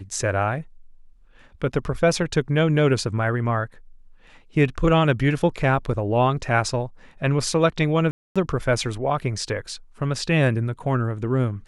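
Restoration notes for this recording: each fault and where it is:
8.11–8.36 gap 0.246 s

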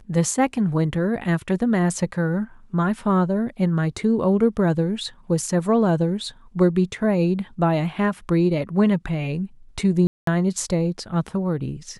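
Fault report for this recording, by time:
10.07–10.27 gap 0.203 s

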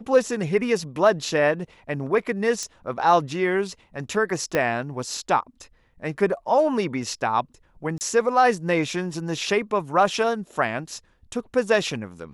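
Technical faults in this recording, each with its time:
2.63 pop -16 dBFS
4.55 pop -9 dBFS
7.98–8.01 gap 29 ms

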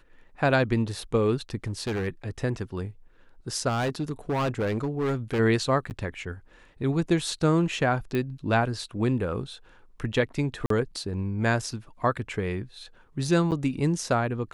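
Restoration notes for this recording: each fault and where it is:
1.66–2.08 clipped -25.5 dBFS
3.68–5.4 clipped -23 dBFS
5.9–5.91 gap 9.4 ms
8.15 pop -17 dBFS
10.66–10.7 gap 43 ms
13.51–13.52 gap 8.4 ms

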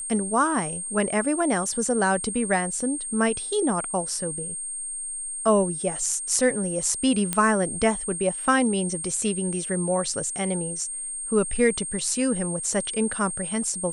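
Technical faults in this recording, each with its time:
tone 8600 Hz -30 dBFS
7.33 pop -8 dBFS

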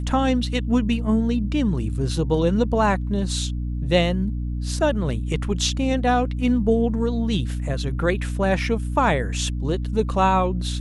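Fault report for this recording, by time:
hum 60 Hz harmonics 5 -26 dBFS

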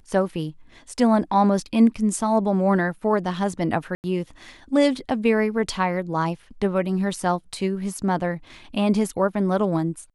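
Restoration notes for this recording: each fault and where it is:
3.95–4.04 gap 89 ms

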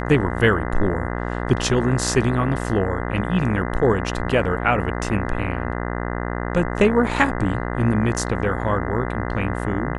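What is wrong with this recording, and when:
buzz 60 Hz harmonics 34 -26 dBFS

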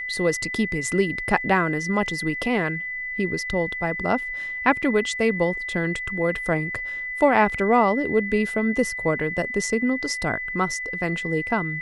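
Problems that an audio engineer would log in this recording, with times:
tone 2000 Hz -28 dBFS
4.82–4.83 gap 5.9 ms

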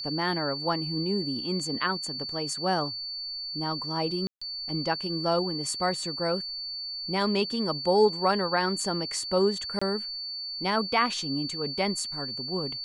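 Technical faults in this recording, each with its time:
tone 4500 Hz -33 dBFS
4.27–4.42 gap 0.145 s
9.79–9.81 gap 25 ms

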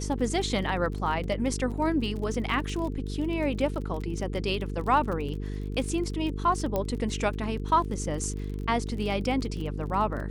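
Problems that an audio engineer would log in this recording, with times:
buzz 50 Hz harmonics 9 -33 dBFS
crackle 32/s -34 dBFS
6.76 pop -15 dBFS

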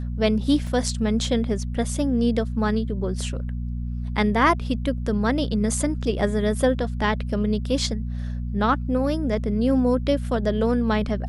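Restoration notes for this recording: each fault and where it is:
hum 60 Hz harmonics 4 -28 dBFS
0.67 gap 2.4 ms

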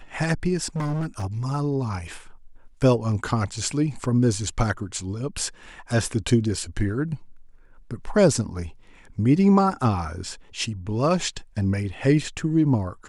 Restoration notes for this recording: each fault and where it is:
0.66–1.24 clipped -23.5 dBFS

